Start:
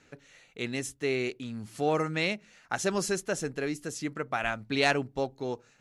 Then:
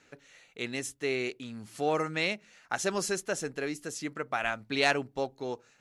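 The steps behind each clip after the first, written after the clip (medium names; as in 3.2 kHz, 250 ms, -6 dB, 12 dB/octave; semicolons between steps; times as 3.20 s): bass shelf 230 Hz -7.5 dB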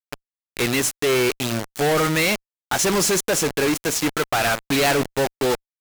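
companded quantiser 2-bit; Chebyshev shaper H 2 -8 dB, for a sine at 0 dBFS; trim +7.5 dB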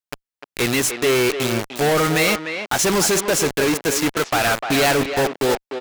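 speakerphone echo 300 ms, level -7 dB; trim +1.5 dB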